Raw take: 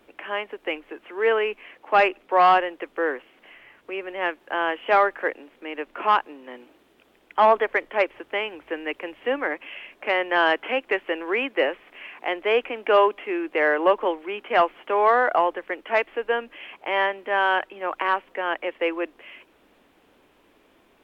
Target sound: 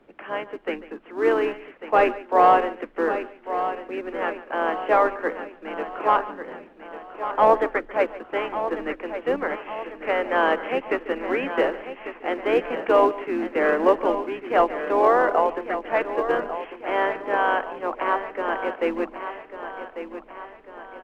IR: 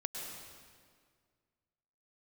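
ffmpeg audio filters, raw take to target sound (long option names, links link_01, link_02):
-filter_complex "[0:a]asplit=4[link_01][link_02][link_03][link_04];[link_02]asetrate=29433,aresample=44100,atempo=1.49831,volume=-11dB[link_05];[link_03]asetrate=33038,aresample=44100,atempo=1.33484,volume=-15dB[link_06];[link_04]asetrate=35002,aresample=44100,atempo=1.25992,volume=-13dB[link_07];[link_01][link_05][link_06][link_07]amix=inputs=4:normalize=0,asubboost=boost=2.5:cutoff=73,aecho=1:1:1146|2292|3438|4584|5730:0.299|0.149|0.0746|0.0373|0.0187,acrossover=split=230|520[link_08][link_09][link_10];[link_09]acrusher=bits=3:mode=log:mix=0:aa=0.000001[link_11];[link_08][link_11][link_10]amix=inputs=3:normalize=0,lowpass=frequency=1100:poles=1,asplit=2[link_12][link_13];[1:a]atrim=start_sample=2205,atrim=end_sample=4410,adelay=144[link_14];[link_13][link_14]afir=irnorm=-1:irlink=0,volume=-15dB[link_15];[link_12][link_15]amix=inputs=2:normalize=0,volume=1.5dB"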